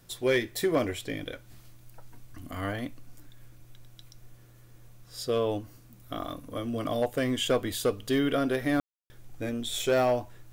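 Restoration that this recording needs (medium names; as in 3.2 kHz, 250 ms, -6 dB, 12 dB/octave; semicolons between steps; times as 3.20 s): clip repair -18 dBFS; de-click; room tone fill 8.80–9.10 s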